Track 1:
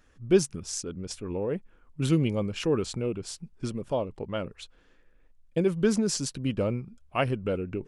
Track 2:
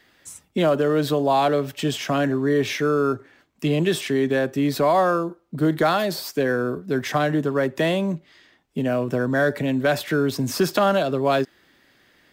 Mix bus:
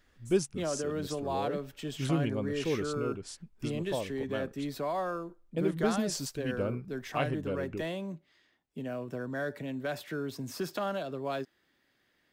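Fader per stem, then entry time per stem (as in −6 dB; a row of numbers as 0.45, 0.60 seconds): −6.0, −14.5 decibels; 0.00, 0.00 seconds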